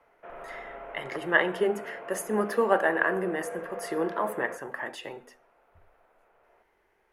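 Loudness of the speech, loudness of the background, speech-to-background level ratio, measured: −28.5 LKFS, −41.0 LKFS, 12.5 dB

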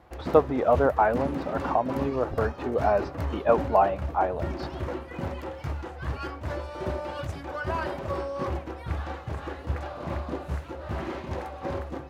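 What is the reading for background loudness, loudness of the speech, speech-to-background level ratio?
−34.0 LKFS, −25.5 LKFS, 8.5 dB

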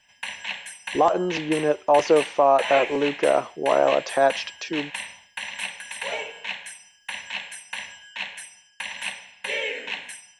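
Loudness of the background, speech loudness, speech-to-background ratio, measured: −32.0 LKFS, −22.0 LKFS, 10.0 dB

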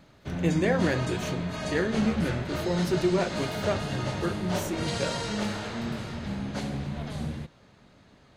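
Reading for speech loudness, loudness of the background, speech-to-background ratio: −30.0 LKFS, −32.5 LKFS, 2.5 dB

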